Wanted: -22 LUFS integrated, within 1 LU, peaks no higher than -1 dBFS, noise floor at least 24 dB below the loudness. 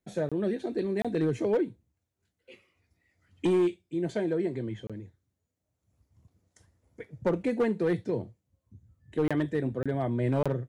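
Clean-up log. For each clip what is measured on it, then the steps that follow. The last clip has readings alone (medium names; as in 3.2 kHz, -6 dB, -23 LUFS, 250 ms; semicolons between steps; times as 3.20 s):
clipped samples 0.9%; clipping level -20.0 dBFS; dropouts 6; longest dropout 26 ms; loudness -30.0 LUFS; peak level -20.0 dBFS; loudness target -22.0 LUFS
-> clip repair -20 dBFS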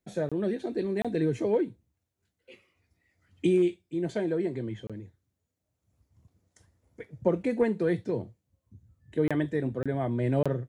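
clipped samples 0.0%; dropouts 6; longest dropout 26 ms
-> interpolate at 0.29/1.02/4.87/9.28/9.83/10.43 s, 26 ms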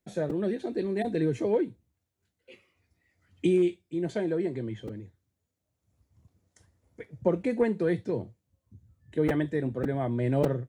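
dropouts 0; loudness -29.0 LUFS; peak level -12.5 dBFS; loudness target -22.0 LUFS
-> trim +7 dB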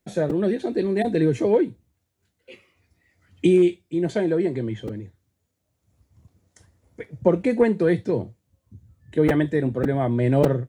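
loudness -22.0 LUFS; peak level -5.5 dBFS; noise floor -76 dBFS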